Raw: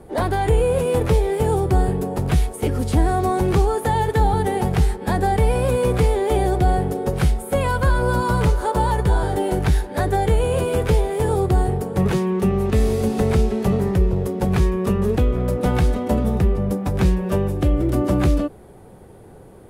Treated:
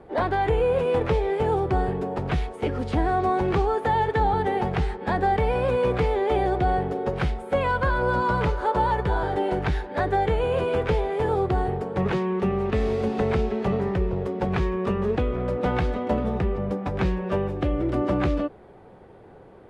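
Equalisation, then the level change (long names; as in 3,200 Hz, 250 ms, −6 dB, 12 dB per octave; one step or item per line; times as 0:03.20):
low-pass filter 3,000 Hz 12 dB per octave
low-shelf EQ 290 Hz −9 dB
0.0 dB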